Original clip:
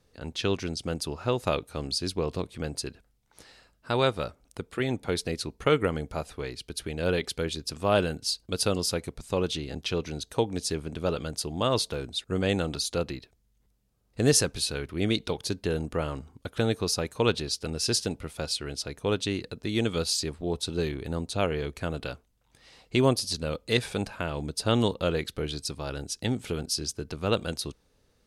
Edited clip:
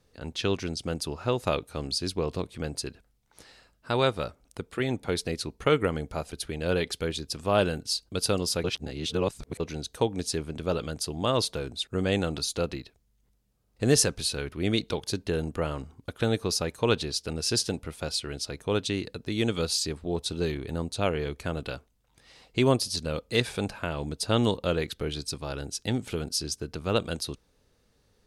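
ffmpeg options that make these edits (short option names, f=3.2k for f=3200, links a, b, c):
-filter_complex "[0:a]asplit=4[a][b][c][d];[a]atrim=end=6.312[e];[b]atrim=start=6.678:end=9.012[f];[c]atrim=start=9.008:end=9.972,asetpts=PTS-STARTPTS,areverse[g];[d]atrim=start=9.968[h];[e][f]acrossfade=d=0.004:c1=hsin:c2=hsin[i];[i][g]acrossfade=d=0.004:c1=hsin:c2=hsin[j];[j][h]acrossfade=d=0.004:c1=hsin:c2=hsin"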